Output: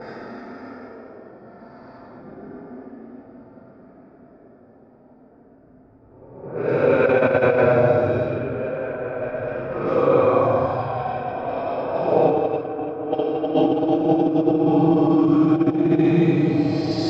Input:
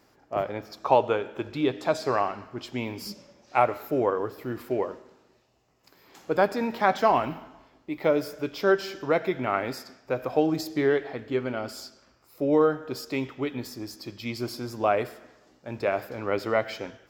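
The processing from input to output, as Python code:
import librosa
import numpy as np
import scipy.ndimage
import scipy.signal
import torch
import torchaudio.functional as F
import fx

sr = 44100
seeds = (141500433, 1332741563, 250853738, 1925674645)

p1 = fx.paulstretch(x, sr, seeds[0], factor=21.0, window_s=0.05, from_s=9.78)
p2 = fx.over_compress(p1, sr, threshold_db=-25.0, ratio=-0.5)
p3 = p2 + fx.echo_diffused(p2, sr, ms=1761, feedback_pct=53, wet_db=-13.0, dry=0)
p4 = fx.env_lowpass(p3, sr, base_hz=510.0, full_db=-24.0)
p5 = fx.air_absorb(p4, sr, metres=150.0)
y = p5 * librosa.db_to_amplitude(8.5)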